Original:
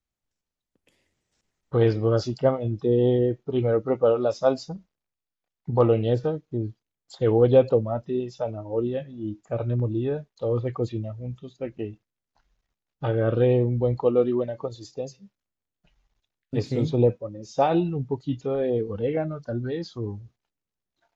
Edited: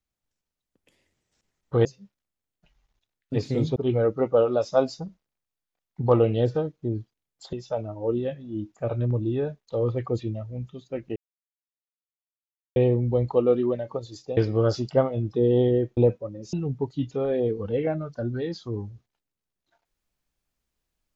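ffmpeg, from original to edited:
-filter_complex "[0:a]asplit=9[a][b][c][d][e][f][g][h][i];[a]atrim=end=1.852[j];[b]atrim=start=15.058:end=16.972[k];[c]atrim=start=3.448:end=7.222[l];[d]atrim=start=8.218:end=11.85,asetpts=PTS-STARTPTS,afade=t=out:st=3.628:d=0.004:c=hsin[m];[e]atrim=start=11.85:end=13.45,asetpts=PTS-STARTPTS,volume=0[n];[f]atrim=start=13.45:end=15.062,asetpts=PTS-STARTPTS,afade=t=in:d=0.004:c=hsin[o];[g]atrim=start=1.848:end=3.452[p];[h]atrim=start=16.968:end=17.532[q];[i]atrim=start=17.828[r];[j][k]acrossfade=d=0.004:c1=hsin:c2=hsin[s];[s][l]acrossfade=d=0.004:c1=hsin:c2=hsin[t];[m][n][o]concat=n=3:v=0:a=1[u];[t][u]acrossfade=d=0.004:c1=hsin:c2=hsin[v];[v][p]acrossfade=d=0.004:c1=hsin:c2=hsin[w];[w][q]acrossfade=d=0.004:c1=hsin:c2=hsin[x];[x][r]acrossfade=d=0.004:c1=hsin:c2=hsin"

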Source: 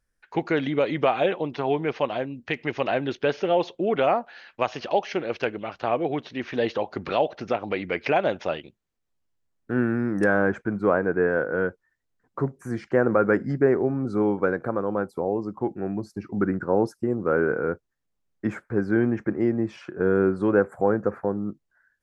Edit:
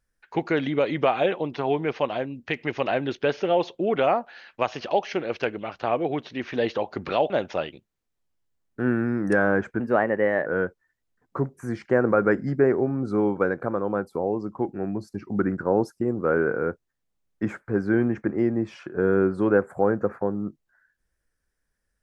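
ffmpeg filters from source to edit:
-filter_complex "[0:a]asplit=4[a][b][c][d];[a]atrim=end=7.302[e];[b]atrim=start=8.208:end=10.714[f];[c]atrim=start=10.71:end=11.48,asetpts=PTS-STARTPTS,asetrate=51597,aresample=44100,atrim=end_sample=29023,asetpts=PTS-STARTPTS[g];[d]atrim=start=11.476[h];[e][f]acrossfade=d=0.004:c1=hsin:c2=hsin[i];[i][g]acrossfade=d=0.004:c1=hsin:c2=hsin[j];[j][h]acrossfade=d=0.004:c1=hsin:c2=hsin"

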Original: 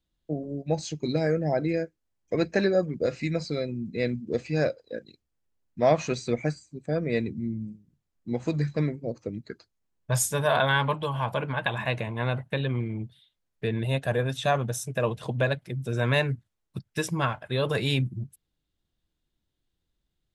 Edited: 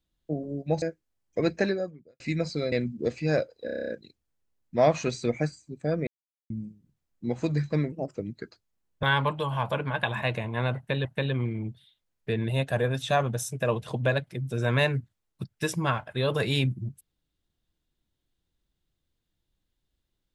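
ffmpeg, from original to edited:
-filter_complex "[0:a]asplit=18[a][b][c][d][e][f][g][h][i][j][k][l][m][n][o][p][q][r];[a]atrim=end=0.822[s];[b]atrim=start=1.768:end=3.15,asetpts=PTS-STARTPTS,afade=t=out:st=0.772:d=0.61:c=qua[t];[c]atrim=start=3.15:end=3.672,asetpts=PTS-STARTPTS,afade=t=in:d=0.004:c=hsin[u];[d]atrim=start=3.998:end=4.962[v];[e]atrim=start=4.928:end=4.962[w];[f]atrim=start=4.928:end=4.962[x];[g]atrim=start=4.928:end=4.962[y];[h]atrim=start=4.928:end=4.962[z];[i]atrim=start=4.928:end=4.962[aa];[j]atrim=start=4.928:end=4.962[ab];[k]atrim=start=4.928:end=4.962[ac];[l]atrim=start=4.928:end=7.11,asetpts=PTS-STARTPTS,afade=t=out:st=2.178:d=0.004:c=hsin[ad];[m]atrim=start=7.11:end=7.54,asetpts=PTS-STARTPTS,volume=0[ae];[n]atrim=start=7.54:end=8.964,asetpts=PTS-STARTPTS,afade=t=in:d=0.004:c=hsin[af];[o]atrim=start=8.96:end=9.23,asetpts=PTS-STARTPTS,asetrate=51597,aresample=44100[ag];[p]atrim=start=9.226:end=10.112[ah];[q]atrim=start=10.658:end=12.682[ai];[r]atrim=start=12.398[aj];[t][u]concat=n=2:v=0:a=1[ak];[s][ak]acrossfade=d=0.004:c1=hsin:c2=hsin[al];[al][v]acrossfade=d=0.004:c1=hsin:c2=hsin[am];[am][w]acrossfade=d=0.004:c1=hsin:c2=hsin[an];[an][x]acrossfade=d=0.004:c1=hsin:c2=hsin[ao];[ao][y]acrossfade=d=0.004:c1=hsin:c2=hsin[ap];[ap][z]acrossfade=d=0.004:c1=hsin:c2=hsin[aq];[aq][aa]acrossfade=d=0.004:c1=hsin:c2=hsin[ar];[ar][ab]acrossfade=d=0.004:c1=hsin:c2=hsin[as];[as][ac]acrossfade=d=0.004:c1=hsin:c2=hsin[at];[ad][ae][af]concat=n=3:v=0:a=1[au];[at][au]acrossfade=d=0.004:c1=hsin:c2=hsin[av];[av][ag]acrossfade=d=0.004:c1=hsin:c2=hsin[aw];[aw][ah]acrossfade=d=0.004:c1=hsin:c2=hsin[ax];[ax][ai]acrossfade=d=0.004:c1=hsin:c2=hsin[ay];[ay][aj]acrossfade=d=0.004:c1=hsin:c2=hsin"

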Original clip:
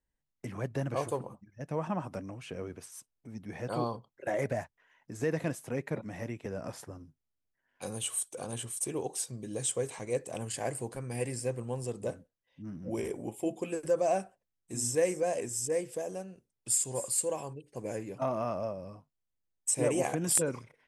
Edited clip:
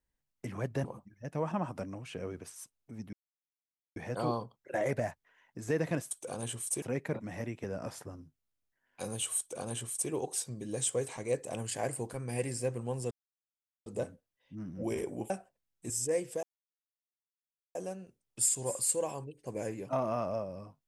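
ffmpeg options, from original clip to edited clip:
-filter_complex "[0:a]asplit=9[a][b][c][d][e][f][g][h][i];[a]atrim=end=0.842[j];[b]atrim=start=1.198:end=3.49,asetpts=PTS-STARTPTS,afade=t=out:st=2.288:d=0.004:c=hsin,apad=pad_dur=0.83[k];[c]atrim=start=3.49:end=5.642,asetpts=PTS-STARTPTS,afade=t=in:d=0.004:c=hsin[l];[d]atrim=start=8.208:end=8.922[m];[e]atrim=start=5.638:end=11.93,asetpts=PTS-STARTPTS,afade=t=out:st=6.288:d=0.004:c=hsin,apad=pad_dur=0.75[n];[f]atrim=start=11.93:end=13.372,asetpts=PTS-STARTPTS,afade=t=in:d=0.004:c=hsin[o];[g]atrim=start=14.158:end=14.762[p];[h]atrim=start=15.508:end=16.04,asetpts=PTS-STARTPTS,afade=t=out:st=0.528:d=0.004:c=hsin,apad=pad_dur=1.32[q];[i]atrim=start=16.04,asetpts=PTS-STARTPTS,afade=t=in:d=0.004:c=hsin[r];[k][l]concat=n=2:v=0:a=1[s];[j][s]acrossfade=d=0.004:c1=hsin:c2=hsin[t];[t][m]acrossfade=d=0.004:c1=hsin:c2=hsin[u];[n][o]concat=n=2:v=0:a=1[v];[u][v]acrossfade=d=0.004:c1=hsin:c2=hsin[w];[w][p]acrossfade=d=0.004:c1=hsin:c2=hsin[x];[q][r]concat=n=2:v=0:a=1[y];[x][y]acrossfade=d=0.004:c1=hsin:c2=hsin"

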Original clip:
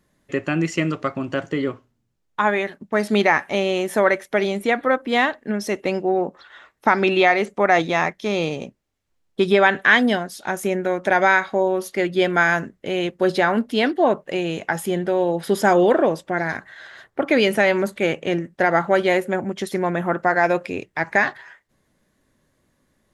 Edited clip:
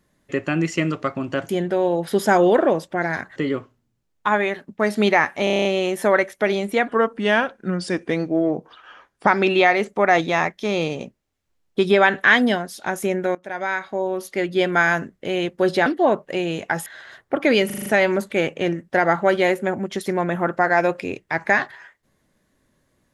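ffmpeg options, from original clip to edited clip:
-filter_complex "[0:a]asplit=20[a][b][c][d][e][f][g][h][i][j][k][l][m][n][o][p][q][r][s][t];[a]atrim=end=1.492[u];[b]atrim=start=14.848:end=16.722[v];[c]atrim=start=1.488:end=3.602[w];[d]atrim=start=3.568:end=3.602[x];[e]atrim=start=3.568:end=3.602[y];[f]atrim=start=3.568:end=3.602[z];[g]atrim=start=3.568:end=3.602[aa];[h]atrim=start=3.568:end=3.602[ab];[i]atrim=start=3.568:end=3.602[ac];[j]atrim=start=3.568:end=4.804[ad];[k]atrim=start=4.8:end=6.88,asetpts=PTS-STARTPTS,asetrate=38367,aresample=44100,atrim=end_sample=105434,asetpts=PTS-STARTPTS[ae];[l]atrim=start=6.876:end=10.96,asetpts=PTS-STARTPTS,afade=t=out:st=4.08:d=0.004:c=hsin:silence=0.1[af];[m]atrim=start=10.96:end=13.472,asetpts=PTS-STARTPTS,afade=t=in:d=1.77:c=qsin:silence=0.1[ag];[n]atrim=start=13.848:end=14.852[ah];[o]atrim=start=16.718:end=17.562[ai];[p]atrim=start=17.518:end=17.562[aj];[q]atrim=start=17.518:end=17.562[ak];[r]atrim=start=17.518:end=17.562[al];[s]atrim=start=17.518:end=17.562[am];[t]atrim=start=17.518[an];[u][v]acrossfade=d=0.004:c1=hsin:c2=hsin[ao];[ao][w]acrossfade=d=0.004:c1=hsin:c2=hsin[ap];[ap][x]acrossfade=d=0.004:c1=hsin:c2=hsin[aq];[aq][y]acrossfade=d=0.004:c1=hsin:c2=hsin[ar];[ar][z]acrossfade=d=0.004:c1=hsin:c2=hsin[as];[as][aa]acrossfade=d=0.004:c1=hsin:c2=hsin[at];[at][ab]acrossfade=d=0.004:c1=hsin:c2=hsin[au];[au][ac]acrossfade=d=0.004:c1=hsin:c2=hsin[av];[av][ad]acrossfade=d=0.004:c1=hsin:c2=hsin[aw];[aw][ae]acrossfade=d=0.004:c1=hsin:c2=hsin[ax];[af][ag]concat=n=2:v=0:a=1[ay];[ax][ay]acrossfade=d=0.004:c1=hsin:c2=hsin[az];[az][ah]acrossfade=d=0.004:c1=hsin:c2=hsin[ba];[ba][ai]acrossfade=d=0.004:c1=hsin:c2=hsin[bb];[bb][aj]acrossfade=d=0.004:c1=hsin:c2=hsin[bc];[bc][ak]acrossfade=d=0.004:c1=hsin:c2=hsin[bd];[bd][al]acrossfade=d=0.004:c1=hsin:c2=hsin[be];[be][am]acrossfade=d=0.004:c1=hsin:c2=hsin[bf];[bf][an]acrossfade=d=0.004:c1=hsin:c2=hsin"

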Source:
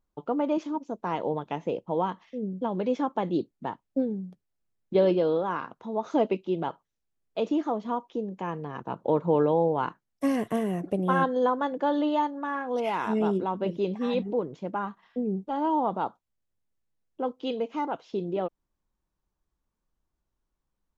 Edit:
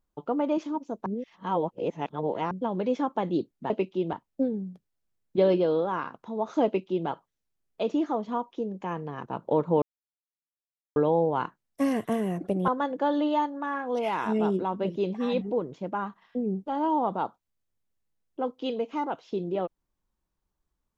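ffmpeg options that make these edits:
-filter_complex "[0:a]asplit=7[a][b][c][d][e][f][g];[a]atrim=end=1.062[h];[b]atrim=start=1.058:end=2.512,asetpts=PTS-STARTPTS,areverse[i];[c]atrim=start=2.508:end=3.702[j];[d]atrim=start=6.218:end=6.652[k];[e]atrim=start=3.698:end=9.39,asetpts=PTS-STARTPTS,afade=t=out:st=5.688:d=0.004:c=hsin,apad=pad_dur=1.14[l];[f]atrim=start=9.39:end=11.112,asetpts=PTS-STARTPTS,afade=t=in:d=0.004:c=hsin[m];[g]atrim=start=11.488[n];[h][i]acrossfade=d=0.004:c1=hsin:c2=hsin[o];[o][j]acrossfade=d=0.004:c1=hsin:c2=hsin[p];[p][k]acrossfade=d=0.004:c1=hsin:c2=hsin[q];[l][m]concat=n=2:v=0:a=1[r];[q][r]acrossfade=d=0.004:c1=hsin:c2=hsin[s];[s][n]acrossfade=d=0.004:c1=hsin:c2=hsin"

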